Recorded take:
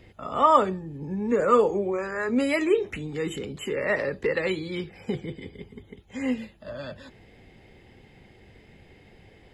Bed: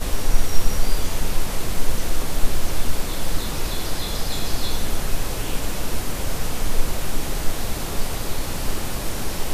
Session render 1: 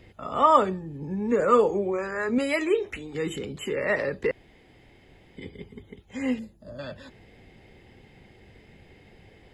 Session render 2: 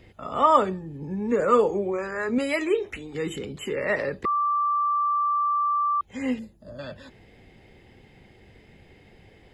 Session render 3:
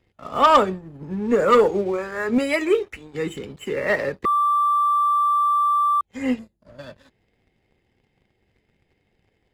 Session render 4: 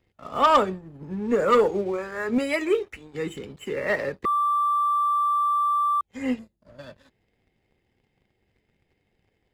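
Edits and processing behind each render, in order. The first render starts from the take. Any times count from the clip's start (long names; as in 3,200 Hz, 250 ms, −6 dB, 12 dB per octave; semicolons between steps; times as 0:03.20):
0:02.38–0:03.15: parametric band 160 Hz −12 dB 1.1 octaves; 0:04.31–0:05.37: fill with room tone; 0:06.39–0:06.79: drawn EQ curve 290 Hz 0 dB, 1,300 Hz −12 dB, 2,900 Hz −19 dB, 5,800 Hz −1 dB
0:04.25–0:06.01: beep over 1,170 Hz −20.5 dBFS
leveller curve on the samples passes 2; expander for the loud parts 1.5 to 1, over −34 dBFS
level −3.5 dB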